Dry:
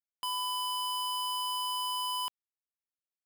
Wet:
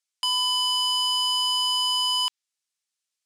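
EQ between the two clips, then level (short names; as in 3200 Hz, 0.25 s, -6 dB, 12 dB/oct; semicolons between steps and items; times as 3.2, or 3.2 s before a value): weighting filter ITU-R 468; dynamic EQ 9700 Hz, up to -6 dB, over -48 dBFS, Q 1.6; +4.0 dB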